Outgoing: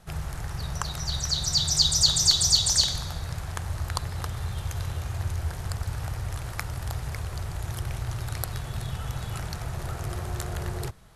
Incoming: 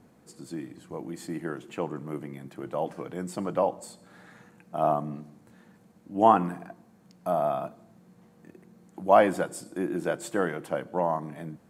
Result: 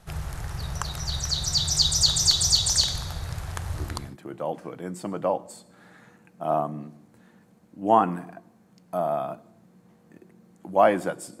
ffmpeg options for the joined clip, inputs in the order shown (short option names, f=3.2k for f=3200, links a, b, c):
-filter_complex "[0:a]apad=whole_dur=11.4,atrim=end=11.4,atrim=end=4.17,asetpts=PTS-STARTPTS[a];[1:a]atrim=start=2:end=9.73,asetpts=PTS-STARTPTS[b];[a][b]acrossfade=d=0.5:c1=qsin:c2=qsin"